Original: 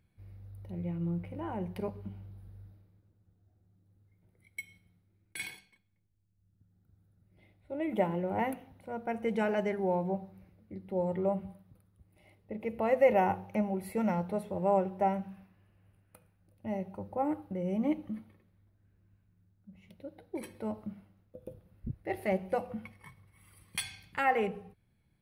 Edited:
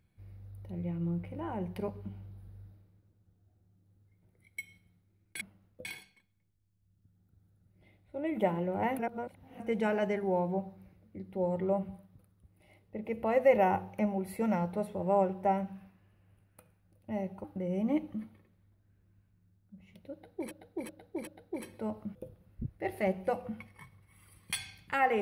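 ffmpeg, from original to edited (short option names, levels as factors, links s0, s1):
-filter_complex "[0:a]asplit=10[s0][s1][s2][s3][s4][s5][s6][s7][s8][s9];[s0]atrim=end=5.412[s10];[s1]atrim=start=20.958:end=21.402[s11];[s2]atrim=start=5.408:end=8.552[s12];[s3]atrim=start=8.548:end=9.162,asetpts=PTS-STARTPTS,areverse[s13];[s4]atrim=start=9.158:end=17.002[s14];[s5]atrim=start=17.388:end=20.462[s15];[s6]atrim=start=20.078:end=20.462[s16];[s7]atrim=start=20.078:end=20.462[s17];[s8]atrim=start=20.078:end=20.962[s18];[s9]atrim=start=21.398[s19];[s10][s11]acrossfade=d=0.004:c1=hsin:c2=hsin[s20];[s20][s12]acrossfade=d=0.004:c1=hsin:c2=hsin[s21];[s21][s13]acrossfade=d=0.004:c1=hsin:c2=hsin[s22];[s22][s14]acrossfade=d=0.004:c1=hsin:c2=hsin[s23];[s23][s15]acrossfade=d=0.004:c1=hsin:c2=hsin[s24];[s24][s16]acrossfade=d=0.004:c1=hsin:c2=hsin[s25];[s25][s17]acrossfade=d=0.004:c1=hsin:c2=hsin[s26];[s26][s18]acrossfade=d=0.004:c1=hsin:c2=hsin[s27];[s27][s19]acrossfade=d=0.004:c1=hsin:c2=hsin"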